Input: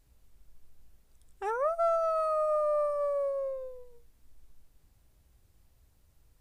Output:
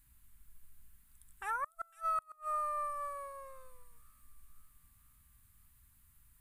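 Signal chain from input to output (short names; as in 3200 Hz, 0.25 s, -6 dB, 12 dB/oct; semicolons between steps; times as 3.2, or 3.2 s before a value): EQ curve 260 Hz 0 dB, 390 Hz -20 dB, 660 Hz -15 dB, 1000 Hz +2 dB, 1700 Hz +6 dB, 2600 Hz +3 dB, 4000 Hz +1 dB, 5600 Hz -4 dB, 9500 Hz +12 dB; flipped gate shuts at -24 dBFS, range -35 dB; thin delay 0.503 s, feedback 59%, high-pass 4200 Hz, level -10 dB; gain -3 dB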